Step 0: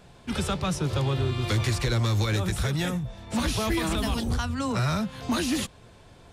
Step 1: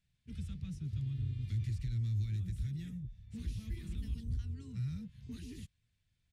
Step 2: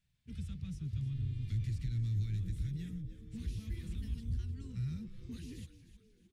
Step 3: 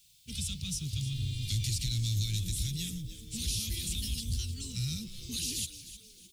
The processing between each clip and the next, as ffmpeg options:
ffmpeg -i in.wav -af "firequalizer=gain_entry='entry(100,0);entry(370,-21);entry(930,-22);entry(1900,-2)':delay=0.05:min_phase=1,afwtdn=0.0251,volume=-8dB" out.wav
ffmpeg -i in.wav -filter_complex "[0:a]asplit=5[link_01][link_02][link_03][link_04][link_05];[link_02]adelay=307,afreqshift=-140,volume=-13dB[link_06];[link_03]adelay=614,afreqshift=-280,volume=-21dB[link_07];[link_04]adelay=921,afreqshift=-420,volume=-28.9dB[link_08];[link_05]adelay=1228,afreqshift=-560,volume=-36.9dB[link_09];[link_01][link_06][link_07][link_08][link_09]amix=inputs=5:normalize=0" out.wav
ffmpeg -i in.wav -af "aexciter=amount=13.5:drive=4.2:freq=2700,volume=2.5dB" out.wav

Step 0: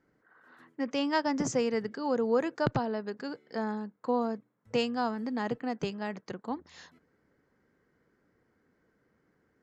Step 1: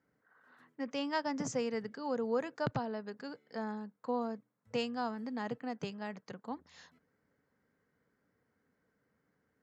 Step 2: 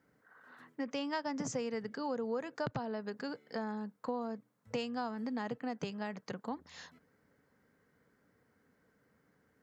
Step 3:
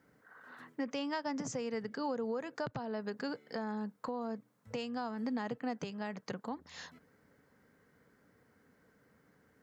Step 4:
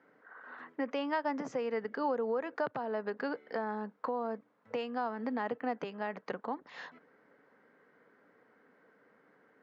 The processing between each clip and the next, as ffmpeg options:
ffmpeg -i in.wav -af "highpass=60,equalizer=frequency=350:width=6.2:gain=-10,volume=-5.5dB" out.wav
ffmpeg -i in.wav -af "acompressor=threshold=-42dB:ratio=3,volume=6dB" out.wav
ffmpeg -i in.wav -af "alimiter=level_in=7.5dB:limit=-24dB:level=0:latency=1:release=446,volume=-7.5dB,volume=4dB" out.wav
ffmpeg -i in.wav -af "highpass=330,lowpass=2300,volume=5.5dB" out.wav

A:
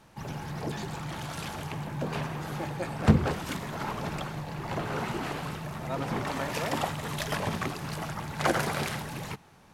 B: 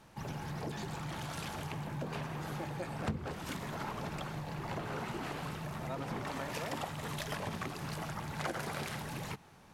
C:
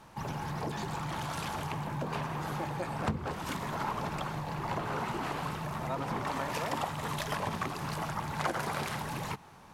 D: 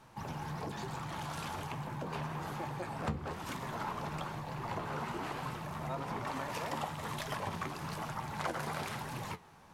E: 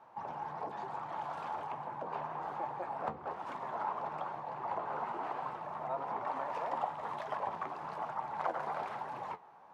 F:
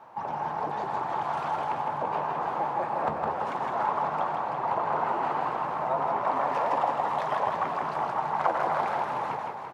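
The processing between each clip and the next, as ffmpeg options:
ffmpeg -i in.wav -af "acompressor=threshold=-35dB:ratio=3,volume=-2dB" out.wav
ffmpeg -i in.wav -af "equalizer=frequency=1000:width_type=o:width=0.73:gain=6,volume=3dB" out.wav
ffmpeg -i in.wav -af "flanger=delay=7.6:depth=5.7:regen=64:speed=1.1:shape=sinusoidal" out.wav
ffmpeg -i in.wav -af "bandpass=frequency=790:width_type=q:width=1.7:csg=0,volume=5dB" out.wav
ffmpeg -i in.wav -af "aecho=1:1:160|336|529.6|742.6|976.8:0.631|0.398|0.251|0.158|0.1,volume=8.5dB" out.wav

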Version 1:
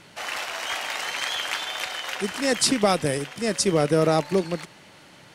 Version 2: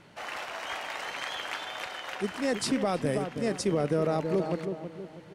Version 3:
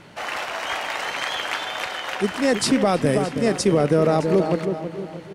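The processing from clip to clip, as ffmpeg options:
ffmpeg -i in.wav -filter_complex "[0:a]highshelf=frequency=2500:gain=-10.5,asplit=2[link_01][link_02];[link_02]adelay=323,lowpass=frequency=990:poles=1,volume=-8.5dB,asplit=2[link_03][link_04];[link_04]adelay=323,lowpass=frequency=990:poles=1,volume=0.44,asplit=2[link_05][link_06];[link_06]adelay=323,lowpass=frequency=990:poles=1,volume=0.44,asplit=2[link_07][link_08];[link_08]adelay=323,lowpass=frequency=990:poles=1,volume=0.44,asplit=2[link_09][link_10];[link_10]adelay=323,lowpass=frequency=990:poles=1,volume=0.44[link_11];[link_03][link_05][link_07][link_09][link_11]amix=inputs=5:normalize=0[link_12];[link_01][link_12]amix=inputs=2:normalize=0,alimiter=limit=-15dB:level=0:latency=1:release=20,volume=-3dB" out.wav
ffmpeg -i in.wav -af "aecho=1:1:616:0.133,volume=9dB" out.wav

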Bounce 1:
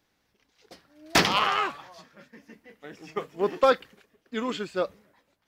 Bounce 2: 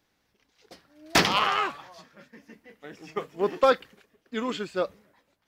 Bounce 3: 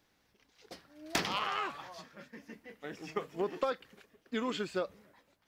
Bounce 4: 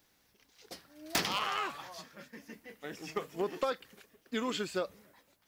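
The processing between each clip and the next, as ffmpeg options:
ffmpeg -i in.wav -af anull out.wav
ffmpeg -i in.wav -af "acompressor=threshold=-31dB:ratio=5" out.wav
ffmpeg -i in.wav -af "crystalizer=i=1.5:c=0,asoftclip=type=hard:threshold=-22.5dB" out.wav

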